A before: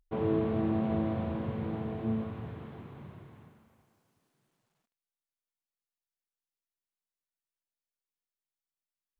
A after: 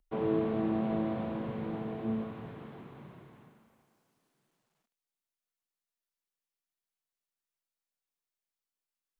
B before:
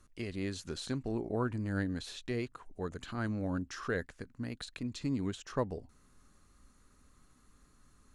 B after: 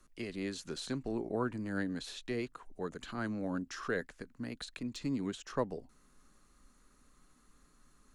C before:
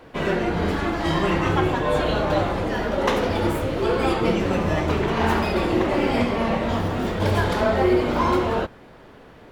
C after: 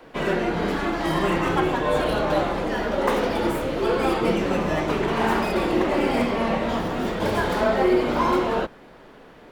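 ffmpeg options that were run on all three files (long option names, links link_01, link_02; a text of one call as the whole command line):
ffmpeg -i in.wav -filter_complex "[0:a]equalizer=frequency=86:width=1.9:gain=-14.5,acrossover=split=350|570|2300[link_01][link_02][link_03][link_04];[link_04]aeval=exprs='0.0211*(abs(mod(val(0)/0.0211+3,4)-2)-1)':channel_layout=same[link_05];[link_01][link_02][link_03][link_05]amix=inputs=4:normalize=0" out.wav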